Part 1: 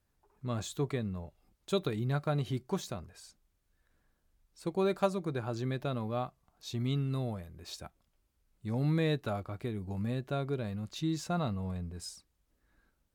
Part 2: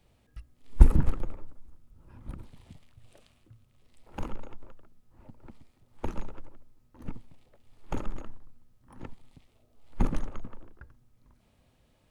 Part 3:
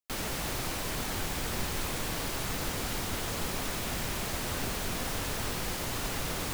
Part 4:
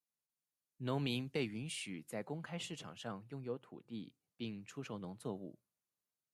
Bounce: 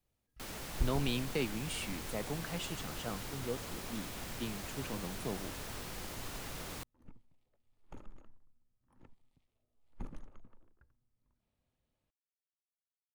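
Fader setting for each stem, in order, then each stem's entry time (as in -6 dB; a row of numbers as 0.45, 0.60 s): off, -18.0 dB, -10.0 dB, +3.0 dB; off, 0.00 s, 0.30 s, 0.00 s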